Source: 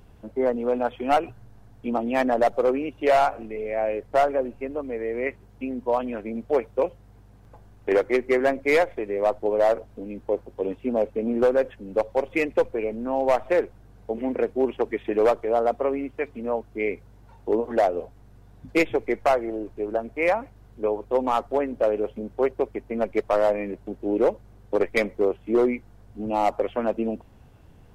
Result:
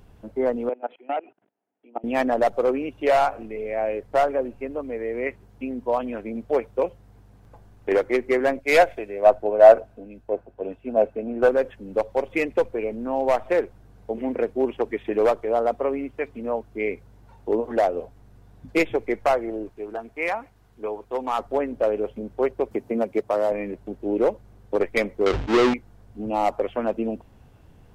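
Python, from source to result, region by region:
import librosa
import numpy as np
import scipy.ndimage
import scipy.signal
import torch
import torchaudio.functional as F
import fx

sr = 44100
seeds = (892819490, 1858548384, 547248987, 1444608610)

y = fx.chain(x, sr, fx.level_steps(step_db=23),
    fx.cabinet(low_hz=290.0, low_slope=24, high_hz=2800.0, hz=(480.0, 1100.0, 1600.0), db=(-3, -8, -5)),
    fx.resample_bad(factor=6, down='none', up='filtered'), at=(0.69, 2.04))
y = fx.chain(y, sr, fx.small_body(hz=(670.0, 1500.0, 2600.0), ring_ms=25, db=9),
    fx.band_widen(depth_pct=70), at=(8.59, 11.49))
y = fx.chain(y, sr, fx.low_shelf(hz=480.0, db=-8.0),
    fx.notch(hz=560.0, q=7.4), at=(19.69, 21.39))
y = fx.chain(y, sr, fx.highpass(hz=100.0, slope=12),
    fx.peak_eq(hz=2100.0, db=-6.0, octaves=2.4),
    fx.band_squash(depth_pct=70), at=(22.71, 23.52))
y = fx.chain(y, sr, fx.halfwave_hold(),
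    fx.air_absorb(metres=160.0),
    fx.sustainer(db_per_s=79.0), at=(25.26, 25.74))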